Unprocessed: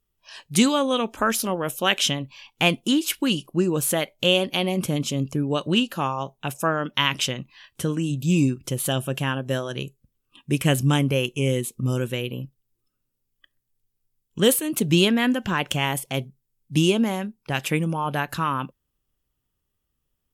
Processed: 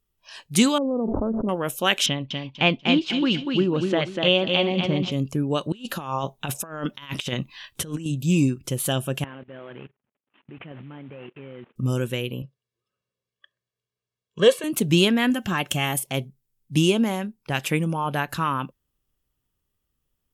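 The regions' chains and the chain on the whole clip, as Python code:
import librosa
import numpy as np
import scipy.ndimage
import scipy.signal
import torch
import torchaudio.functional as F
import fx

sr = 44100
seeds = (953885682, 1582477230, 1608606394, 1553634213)

y = fx.chain(x, sr, fx.gaussian_blur(sigma=13.0),
    fx.env_flatten(amount_pct=100), at=(0.78, 1.49))
y = fx.chain(y, sr, fx.lowpass(hz=4300.0, slope=24),
    fx.echo_feedback(ms=244, feedback_pct=26, wet_db=-4.5), at=(2.06, 5.12))
y = fx.chain(y, sr, fx.peak_eq(hz=3700.0, db=5.0, octaves=0.23),
    fx.over_compress(threshold_db=-29.0, ratio=-0.5), at=(5.72, 8.06))
y = fx.chain(y, sr, fx.cvsd(bps=16000),
    fx.highpass(hz=170.0, slope=12),
    fx.level_steps(step_db=20), at=(9.24, 11.76))
y = fx.chain(y, sr, fx.bandpass_edges(low_hz=180.0, high_hz=4400.0),
    fx.comb(ms=1.8, depth=0.85), at=(12.42, 14.64))
y = fx.chain(y, sr, fx.high_shelf(hz=8800.0, db=9.0),
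    fx.notch_comb(f0_hz=490.0), at=(15.3, 16.07))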